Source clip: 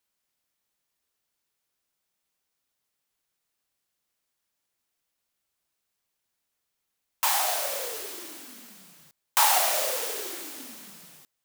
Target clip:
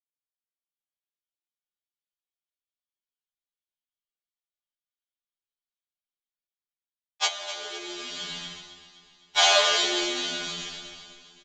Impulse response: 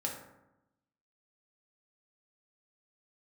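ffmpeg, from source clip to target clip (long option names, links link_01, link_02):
-filter_complex "[0:a]agate=range=-33dB:threshold=-39dB:ratio=3:detection=peak,equalizer=frequency=3500:width_type=o:width=0.74:gain=14,aresample=16000,aresample=44100,asubboost=boost=8.5:cutoff=95[link_01];[1:a]atrim=start_sample=2205[link_02];[link_01][link_02]afir=irnorm=-1:irlink=0,asettb=1/sr,asplit=3[link_03][link_04][link_05];[link_03]atrim=end=7.264[link_06];[link_04]atrim=start=7.26:end=9.38,asetpts=PTS-STARTPTS,afade=type=in:duration=0.004:curve=qsin,afade=type=out:start_time=2.116:duration=0.004:curve=qsin,acompressor=threshold=-36dB:ratio=10[link_07];[link_05]atrim=start=9.376[link_08];[link_06][link_07]acrossfade=duration=0.004:curve1=hsin:curve2=qsin[link_09];[link_09][link_08]acrossfade=duration=0.004:curve1=qsin:curve2=hsin,afreqshift=-150,aecho=1:1:4.9:1,dynaudnorm=framelen=310:gausssize=5:maxgain=10.5dB,aecho=1:1:257|514|771|1028|1285|1542:0.2|0.114|0.0648|0.037|0.0211|0.012,afftfilt=real='re*2*eq(mod(b,4),0)':imag='im*2*eq(mod(b,4),0)':win_size=2048:overlap=0.75,volume=-4dB"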